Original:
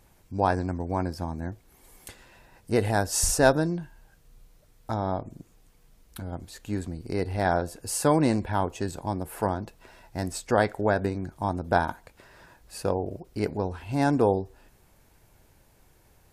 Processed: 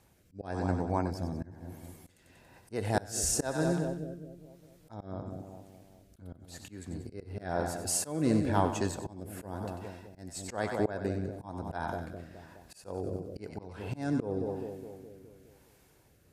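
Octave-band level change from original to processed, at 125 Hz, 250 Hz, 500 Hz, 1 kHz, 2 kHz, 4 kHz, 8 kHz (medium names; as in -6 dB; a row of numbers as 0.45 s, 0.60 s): -5.5 dB, -5.0 dB, -8.0 dB, -9.0 dB, -9.5 dB, -6.0 dB, -3.5 dB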